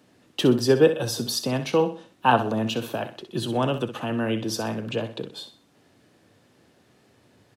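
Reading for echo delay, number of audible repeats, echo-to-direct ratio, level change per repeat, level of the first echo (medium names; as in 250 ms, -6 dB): 63 ms, 3, -10.5 dB, -9.0 dB, -11.0 dB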